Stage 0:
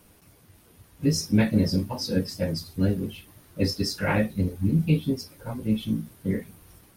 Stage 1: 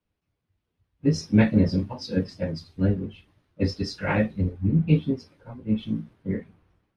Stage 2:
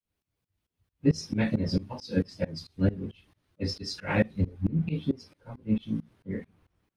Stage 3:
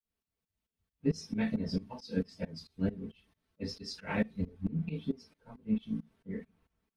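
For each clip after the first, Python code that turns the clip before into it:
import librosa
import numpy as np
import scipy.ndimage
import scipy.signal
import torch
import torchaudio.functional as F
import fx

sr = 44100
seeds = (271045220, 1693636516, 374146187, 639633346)

y1 = scipy.signal.sosfilt(scipy.signal.butter(2, 3300.0, 'lowpass', fs=sr, output='sos'), x)
y1 = fx.band_widen(y1, sr, depth_pct=70)
y2 = fx.tremolo_shape(y1, sr, shape='saw_up', hz=4.5, depth_pct=95)
y2 = fx.high_shelf(y2, sr, hz=3700.0, db=8.0)
y3 = y2 + 0.56 * np.pad(y2, (int(4.5 * sr / 1000.0), 0))[:len(y2)]
y3 = F.gain(torch.from_numpy(y3), -7.5).numpy()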